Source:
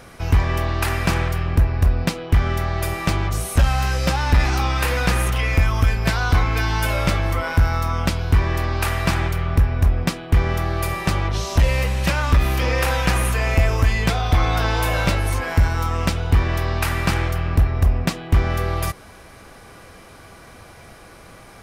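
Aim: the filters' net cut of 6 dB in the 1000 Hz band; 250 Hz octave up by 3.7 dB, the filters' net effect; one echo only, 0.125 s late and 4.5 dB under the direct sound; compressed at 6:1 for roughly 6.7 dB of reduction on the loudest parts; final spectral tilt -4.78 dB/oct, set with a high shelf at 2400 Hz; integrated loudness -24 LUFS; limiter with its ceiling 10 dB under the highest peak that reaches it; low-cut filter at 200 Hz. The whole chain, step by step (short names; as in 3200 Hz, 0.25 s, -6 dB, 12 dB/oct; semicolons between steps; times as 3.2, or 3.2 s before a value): HPF 200 Hz; bell 250 Hz +8.5 dB; bell 1000 Hz -7 dB; high shelf 2400 Hz -8 dB; compressor 6:1, threshold -25 dBFS; limiter -21.5 dBFS; echo 0.125 s -4.5 dB; gain +6.5 dB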